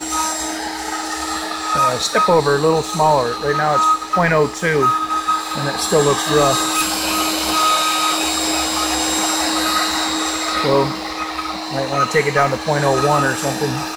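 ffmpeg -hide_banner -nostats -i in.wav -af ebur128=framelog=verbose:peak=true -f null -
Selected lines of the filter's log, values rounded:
Integrated loudness:
  I:         -16.9 LUFS
  Threshold: -26.9 LUFS
Loudness range:
  LRA:         2.3 LU
  Threshold: -36.7 LUFS
  LRA low:   -18.0 LUFS
  LRA high:  -15.7 LUFS
True peak:
  Peak:       -3.3 dBFS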